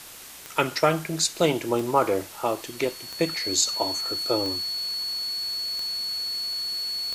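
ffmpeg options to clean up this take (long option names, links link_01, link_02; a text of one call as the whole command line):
ffmpeg -i in.wav -af "adeclick=threshold=4,bandreject=frequency=4400:width=30,afwtdn=0.0079" out.wav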